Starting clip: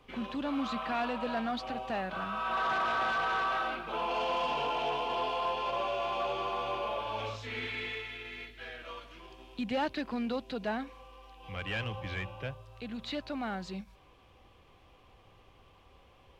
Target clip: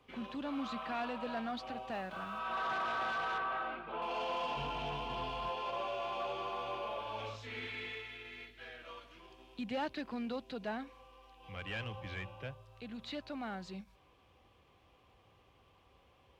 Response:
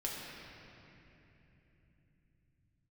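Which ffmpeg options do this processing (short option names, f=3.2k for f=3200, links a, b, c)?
-filter_complex "[0:a]highpass=52,asettb=1/sr,asplit=3[a][b][c];[a]atrim=end=1.914[d];[b]atrim=start=1.91:end=2.39,asetpts=PTS-STARTPTS,afade=t=in:d=0.004:c=qsin,afade=t=out:st=0.476:d=0.004:c=qsin,aeval=exprs='sgn(val(0))*max(abs(val(0))-0.00119,0)':c=same[e];[c]atrim=start=2.386[f];[d][e]acrossfade=d=0.004:c1=hsin:c2=qsin[g];[g][f]acrossfade=d=0.004:c1=qsin:c2=hsin,asettb=1/sr,asplit=3[h][i][j];[h]atrim=end=3.384[k];[i]atrim=start=3.38:end=4.02,asetpts=PTS-STARTPTS,afade=t=in:d=0.004:c=qsin,afade=t=out:st=0.636:d=0.004:c=qsin,lowpass=2.6k[l];[j]atrim=start=4.016[m];[k][l]acrossfade=d=0.004:c1=hsin:c2=qsin[n];[n][m]acrossfade=d=0.004:c1=qsin:c2=hsin,asplit=3[o][p][q];[o]afade=t=out:st=4.56:d=0.02[r];[p]asubboost=boost=7.5:cutoff=170,afade=t=in:st=4.56:d=0.02,afade=t=out:st=5.48:d=0.02[s];[q]afade=t=in:st=5.48:d=0.02[t];[r][s][t]amix=inputs=3:normalize=0,volume=-5.5dB"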